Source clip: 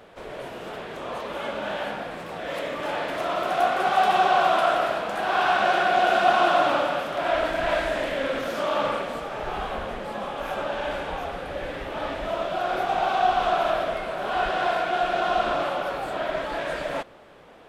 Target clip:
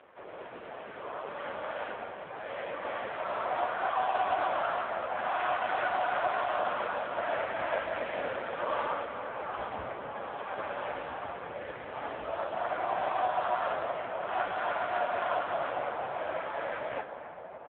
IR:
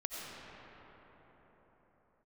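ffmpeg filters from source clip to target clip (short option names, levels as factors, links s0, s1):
-filter_complex "[0:a]asubboost=boost=4:cutoff=110,adynamicsmooth=sensitivity=0.5:basefreq=2500,lowshelf=f=470:g=-11,alimiter=limit=0.119:level=0:latency=1:release=275,asplit=2[s0][s1];[1:a]atrim=start_sample=2205,asetrate=29106,aresample=44100[s2];[s1][s2]afir=irnorm=-1:irlink=0,volume=0.316[s3];[s0][s3]amix=inputs=2:normalize=0,asplit=3[s4][s5][s6];[s5]asetrate=37084,aresample=44100,atempo=1.18921,volume=0.562[s7];[s6]asetrate=58866,aresample=44100,atempo=0.749154,volume=0.398[s8];[s4][s7][s8]amix=inputs=3:normalize=0,asplit=6[s9][s10][s11][s12][s13][s14];[s10]adelay=100,afreqshift=-150,volume=0.106[s15];[s11]adelay=200,afreqshift=-300,volume=0.0596[s16];[s12]adelay=300,afreqshift=-450,volume=0.0331[s17];[s13]adelay=400,afreqshift=-600,volume=0.0186[s18];[s14]adelay=500,afreqshift=-750,volume=0.0105[s19];[s9][s15][s16][s17][s18][s19]amix=inputs=6:normalize=0,acontrast=35,volume=0.376" -ar 8000 -c:a libopencore_amrnb -b:a 5900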